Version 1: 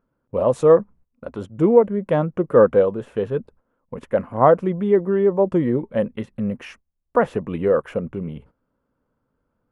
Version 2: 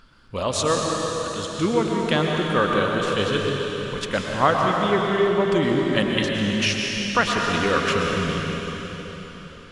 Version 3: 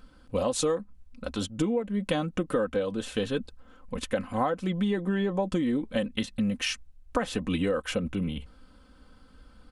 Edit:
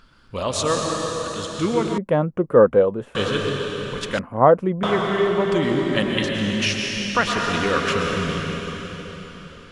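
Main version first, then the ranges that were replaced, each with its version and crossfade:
2
0:01.98–0:03.15: punch in from 1
0:04.19–0:04.83: punch in from 1
not used: 3

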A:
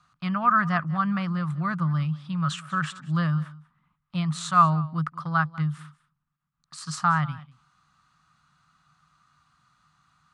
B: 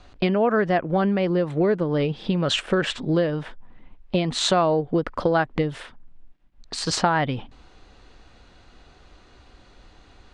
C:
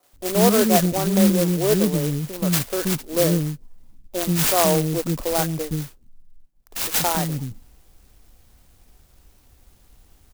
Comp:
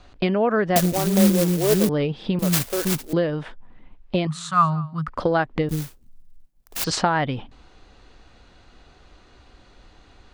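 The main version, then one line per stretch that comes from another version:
B
0:00.76–0:01.89: punch in from C
0:02.39–0:03.13: punch in from C
0:04.27–0:05.08: punch in from A
0:05.69–0:06.84: punch in from C

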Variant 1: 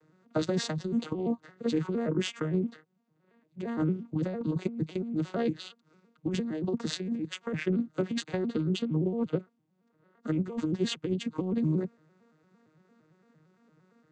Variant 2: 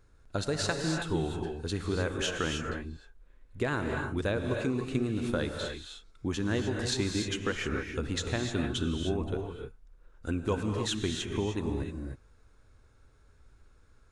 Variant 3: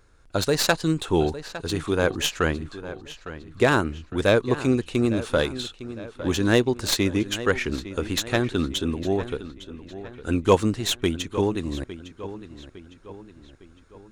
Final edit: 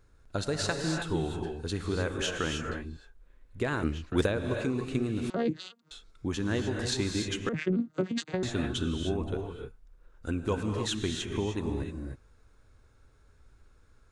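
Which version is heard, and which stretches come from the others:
2
0:03.83–0:04.26: punch in from 3
0:05.30–0:05.91: punch in from 1
0:07.49–0:08.43: punch in from 1

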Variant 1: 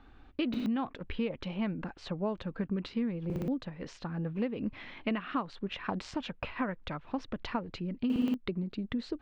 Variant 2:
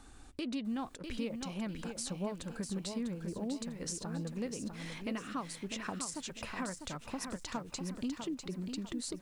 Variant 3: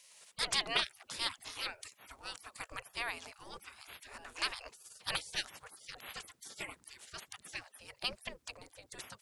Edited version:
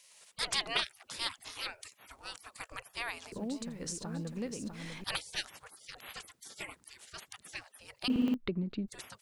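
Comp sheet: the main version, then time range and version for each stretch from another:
3
0:03.32–0:05.04: punch in from 2
0:08.08–0:08.88: punch in from 1

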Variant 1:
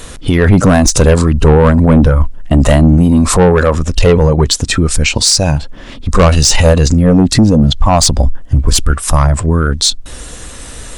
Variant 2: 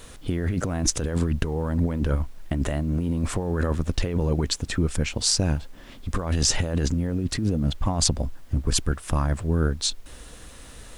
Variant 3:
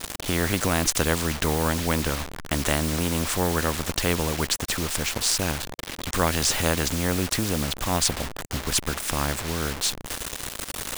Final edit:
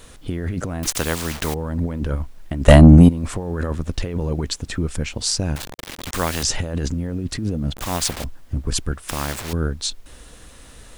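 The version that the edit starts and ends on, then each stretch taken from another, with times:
2
0:00.83–0:01.54: punch in from 3
0:02.68–0:03.09: punch in from 1
0:05.56–0:06.43: punch in from 3
0:07.74–0:08.24: punch in from 3
0:09.09–0:09.53: punch in from 3

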